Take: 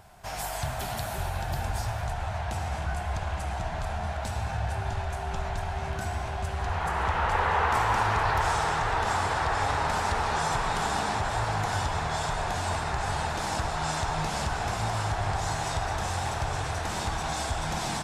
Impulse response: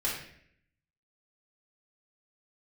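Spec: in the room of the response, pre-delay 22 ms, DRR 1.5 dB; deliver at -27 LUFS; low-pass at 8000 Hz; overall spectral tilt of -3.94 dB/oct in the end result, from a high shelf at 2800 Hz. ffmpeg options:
-filter_complex "[0:a]lowpass=8k,highshelf=f=2.8k:g=3.5,asplit=2[a][b];[1:a]atrim=start_sample=2205,adelay=22[c];[b][c]afir=irnorm=-1:irlink=0,volume=-8.5dB[d];[a][d]amix=inputs=2:normalize=0,volume=-0.5dB"

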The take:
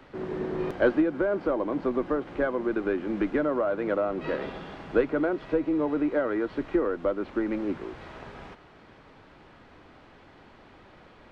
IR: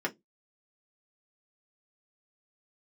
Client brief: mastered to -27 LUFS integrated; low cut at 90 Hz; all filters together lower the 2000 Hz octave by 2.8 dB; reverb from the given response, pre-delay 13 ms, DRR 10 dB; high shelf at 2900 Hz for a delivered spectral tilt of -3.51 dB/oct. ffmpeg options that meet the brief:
-filter_complex "[0:a]highpass=90,equalizer=f=2k:t=o:g=-6,highshelf=f=2.9k:g=5.5,asplit=2[a][b];[1:a]atrim=start_sample=2205,adelay=13[c];[b][c]afir=irnorm=-1:irlink=0,volume=-17dB[d];[a][d]amix=inputs=2:normalize=0,volume=0.5dB"

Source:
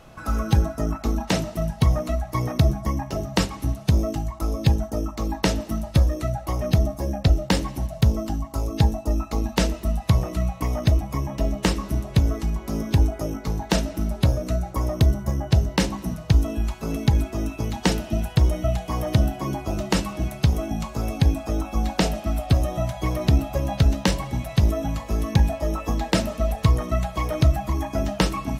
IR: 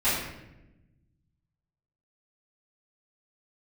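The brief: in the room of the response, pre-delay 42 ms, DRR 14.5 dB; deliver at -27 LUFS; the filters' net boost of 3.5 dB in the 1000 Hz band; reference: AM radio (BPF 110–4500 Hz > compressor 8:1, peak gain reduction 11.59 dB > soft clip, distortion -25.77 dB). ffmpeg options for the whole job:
-filter_complex "[0:a]equalizer=f=1k:t=o:g=4.5,asplit=2[a][b];[1:a]atrim=start_sample=2205,adelay=42[c];[b][c]afir=irnorm=-1:irlink=0,volume=-28dB[d];[a][d]amix=inputs=2:normalize=0,highpass=110,lowpass=4.5k,acompressor=threshold=-25dB:ratio=8,asoftclip=threshold=-13dB,volume=4.5dB"

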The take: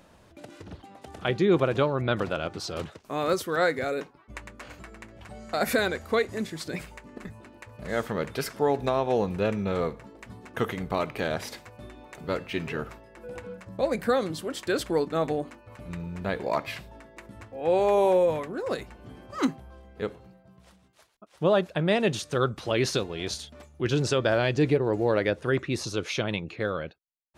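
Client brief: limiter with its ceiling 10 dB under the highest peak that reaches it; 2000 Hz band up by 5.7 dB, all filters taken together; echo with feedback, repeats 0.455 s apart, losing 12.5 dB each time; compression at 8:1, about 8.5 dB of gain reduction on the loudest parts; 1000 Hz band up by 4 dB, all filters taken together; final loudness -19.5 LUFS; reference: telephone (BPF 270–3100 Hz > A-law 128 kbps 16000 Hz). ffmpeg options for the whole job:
-af "equalizer=f=1k:t=o:g=3.5,equalizer=f=2k:t=o:g=7,acompressor=threshold=-25dB:ratio=8,alimiter=limit=-20.5dB:level=0:latency=1,highpass=270,lowpass=3.1k,aecho=1:1:455|910|1365:0.237|0.0569|0.0137,volume=15dB" -ar 16000 -c:a pcm_alaw

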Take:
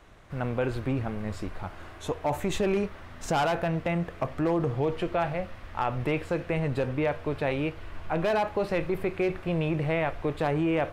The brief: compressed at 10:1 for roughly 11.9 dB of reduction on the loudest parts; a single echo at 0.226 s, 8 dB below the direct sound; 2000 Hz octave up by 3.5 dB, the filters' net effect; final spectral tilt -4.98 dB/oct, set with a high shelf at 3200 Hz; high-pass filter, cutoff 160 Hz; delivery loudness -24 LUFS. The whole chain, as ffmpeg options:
-af "highpass=160,equalizer=f=2k:t=o:g=3,highshelf=f=3.2k:g=4,acompressor=threshold=-34dB:ratio=10,aecho=1:1:226:0.398,volume=14.5dB"

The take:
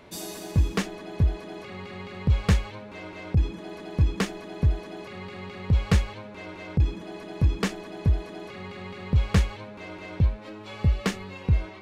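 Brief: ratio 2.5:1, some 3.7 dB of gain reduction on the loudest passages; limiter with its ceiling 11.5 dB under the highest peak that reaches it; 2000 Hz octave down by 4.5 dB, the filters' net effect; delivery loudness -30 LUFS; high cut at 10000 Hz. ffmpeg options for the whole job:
-af "lowpass=10k,equalizer=f=2k:t=o:g=-5.5,acompressor=threshold=-21dB:ratio=2.5,volume=6.5dB,alimiter=limit=-17.5dB:level=0:latency=1"

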